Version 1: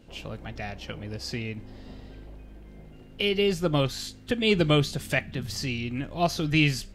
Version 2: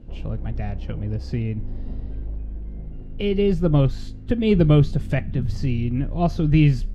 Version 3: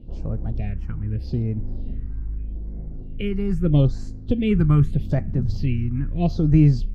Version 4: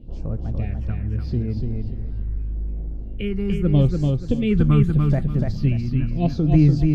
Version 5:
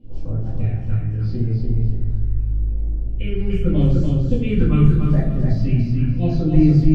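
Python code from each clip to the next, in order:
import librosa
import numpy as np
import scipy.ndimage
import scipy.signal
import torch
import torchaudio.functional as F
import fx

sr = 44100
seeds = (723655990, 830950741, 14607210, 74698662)

y1 = fx.tilt_eq(x, sr, slope=-4.0)
y1 = y1 * librosa.db_to_amplitude(-1.5)
y2 = fx.phaser_stages(y1, sr, stages=4, low_hz=530.0, high_hz=3300.0, hz=0.8, feedback_pct=25)
y3 = fx.echo_feedback(y2, sr, ms=291, feedback_pct=26, wet_db=-4.0)
y4 = fx.room_shoebox(y3, sr, seeds[0], volume_m3=150.0, walls='mixed', distance_m=2.1)
y4 = y4 * librosa.db_to_amplitude(-8.5)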